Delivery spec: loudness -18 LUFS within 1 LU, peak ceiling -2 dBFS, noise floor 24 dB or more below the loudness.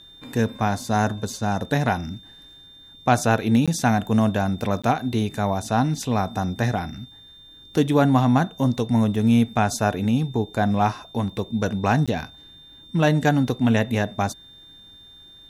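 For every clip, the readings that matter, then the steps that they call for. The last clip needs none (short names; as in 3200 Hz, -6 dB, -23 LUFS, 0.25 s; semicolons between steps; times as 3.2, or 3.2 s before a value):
dropouts 3; longest dropout 16 ms; steady tone 3600 Hz; tone level -45 dBFS; loudness -22.5 LUFS; peak -6.5 dBFS; loudness target -18.0 LUFS
-> interpolate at 3.66/4.82/12.06, 16 ms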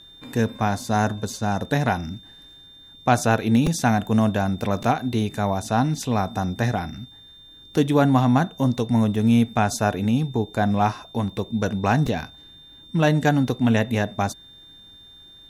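dropouts 0; steady tone 3600 Hz; tone level -45 dBFS
-> notch 3600 Hz, Q 30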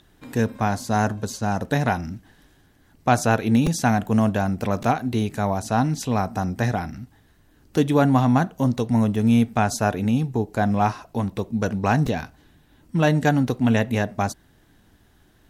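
steady tone none; loudness -22.5 LUFS; peak -7.0 dBFS; loudness target -18.0 LUFS
-> gain +4.5 dB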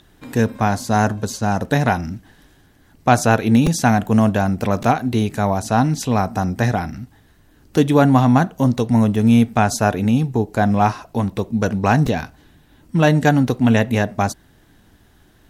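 loudness -18.0 LUFS; peak -2.5 dBFS; noise floor -53 dBFS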